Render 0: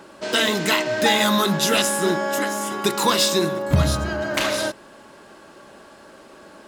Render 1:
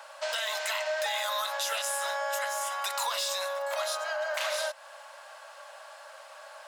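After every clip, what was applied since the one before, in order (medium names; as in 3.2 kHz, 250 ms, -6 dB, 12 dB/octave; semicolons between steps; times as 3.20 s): steep high-pass 560 Hz 72 dB/octave; peak limiter -14.5 dBFS, peak gain reduction 8 dB; compression 2.5:1, threshold -31 dBFS, peak gain reduction 7.5 dB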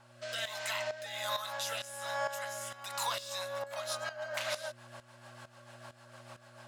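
rotary cabinet horn 1.2 Hz, later 6.7 Hz, at 2.87 s; mains buzz 120 Hz, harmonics 3, -55 dBFS -7 dB/octave; tremolo saw up 2.2 Hz, depth 75%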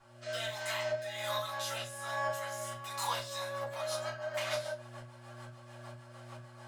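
simulated room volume 130 m³, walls furnished, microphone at 3.2 m; trim -7.5 dB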